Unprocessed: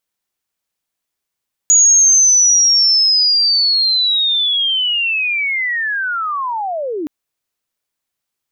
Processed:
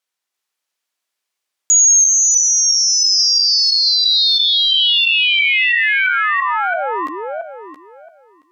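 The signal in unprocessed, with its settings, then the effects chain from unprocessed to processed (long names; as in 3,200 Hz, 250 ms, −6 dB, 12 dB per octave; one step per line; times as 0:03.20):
glide linear 6,800 Hz → 280 Hz −6 dBFS → −19 dBFS 5.37 s
feedback delay that plays each chunk backwards 337 ms, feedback 40%, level −1.5 dB
meter weighting curve A
brickwall limiter −7 dBFS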